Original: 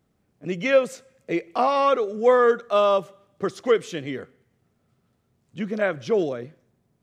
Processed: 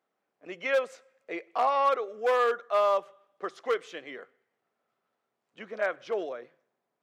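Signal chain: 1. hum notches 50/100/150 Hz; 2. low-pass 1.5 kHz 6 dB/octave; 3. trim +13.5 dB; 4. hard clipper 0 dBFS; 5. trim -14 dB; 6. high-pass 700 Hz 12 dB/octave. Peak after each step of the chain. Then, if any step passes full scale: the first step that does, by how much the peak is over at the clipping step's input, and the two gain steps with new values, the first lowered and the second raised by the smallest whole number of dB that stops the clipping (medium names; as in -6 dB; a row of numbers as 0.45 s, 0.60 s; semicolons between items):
-7.0 dBFS, -7.5 dBFS, +6.0 dBFS, 0.0 dBFS, -14.0 dBFS, -14.5 dBFS; step 3, 6.0 dB; step 3 +7.5 dB, step 5 -8 dB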